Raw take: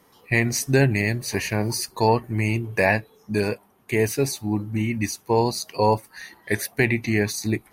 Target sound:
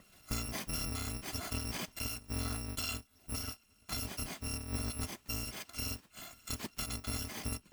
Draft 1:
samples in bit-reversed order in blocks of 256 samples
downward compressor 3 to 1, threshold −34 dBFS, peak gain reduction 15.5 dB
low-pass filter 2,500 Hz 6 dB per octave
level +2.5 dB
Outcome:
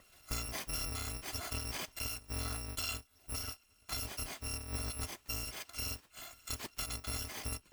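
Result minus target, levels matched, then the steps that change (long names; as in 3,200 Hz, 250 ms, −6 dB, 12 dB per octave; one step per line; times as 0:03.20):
250 Hz band −6.0 dB
add after low-pass filter: parametric band 190 Hz +10.5 dB 1.1 octaves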